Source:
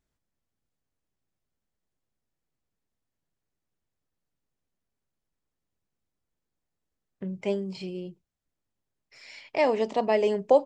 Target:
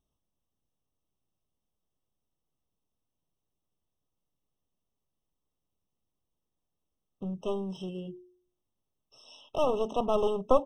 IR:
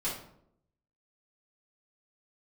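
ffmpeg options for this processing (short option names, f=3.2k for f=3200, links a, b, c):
-af "bandreject=f=120.1:t=h:w=4,bandreject=f=240.2:t=h:w=4,bandreject=f=360.3:t=h:w=4,aeval=exprs='clip(val(0),-1,0.0251)':c=same,afftfilt=real='re*eq(mod(floor(b*sr/1024/1300),2),0)':imag='im*eq(mod(floor(b*sr/1024/1300),2),0)':win_size=1024:overlap=0.75"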